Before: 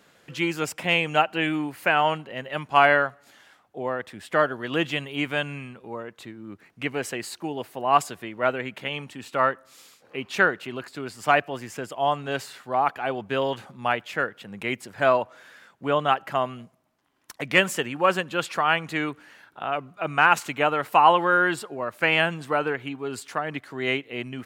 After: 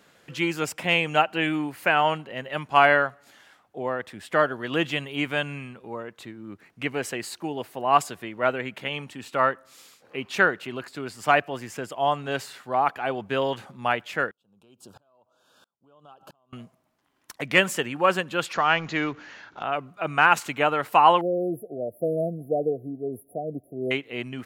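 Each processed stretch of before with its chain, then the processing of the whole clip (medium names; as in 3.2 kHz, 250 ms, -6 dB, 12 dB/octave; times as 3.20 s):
14.31–16.53 s: compression, threshold -34 dBFS + Butterworth band-stop 2 kHz, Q 1.2 + sawtooth tremolo in dB swelling 1.5 Hz, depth 34 dB
18.53–19.63 s: companding laws mixed up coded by mu + steep low-pass 7 kHz 96 dB/octave
21.21–23.91 s: brick-wall FIR band-stop 750–9900 Hz + dynamic bell 470 Hz, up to +5 dB, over -42 dBFS, Q 7.8
whole clip: none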